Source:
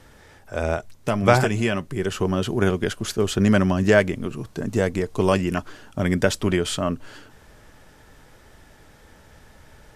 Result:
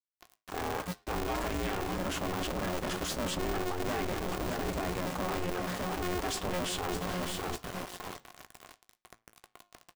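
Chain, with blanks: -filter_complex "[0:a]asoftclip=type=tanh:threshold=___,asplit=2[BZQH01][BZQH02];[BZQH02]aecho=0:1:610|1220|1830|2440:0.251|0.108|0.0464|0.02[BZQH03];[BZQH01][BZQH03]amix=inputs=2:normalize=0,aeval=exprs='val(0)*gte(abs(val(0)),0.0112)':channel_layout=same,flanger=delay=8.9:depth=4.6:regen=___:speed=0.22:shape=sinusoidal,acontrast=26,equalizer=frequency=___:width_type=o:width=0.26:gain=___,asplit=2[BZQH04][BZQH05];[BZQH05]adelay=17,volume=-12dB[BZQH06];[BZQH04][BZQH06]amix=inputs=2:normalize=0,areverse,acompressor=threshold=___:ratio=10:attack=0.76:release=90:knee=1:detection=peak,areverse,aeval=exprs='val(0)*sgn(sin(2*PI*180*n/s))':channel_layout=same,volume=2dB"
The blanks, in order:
-17dB, -82, 900, 13.5, -31dB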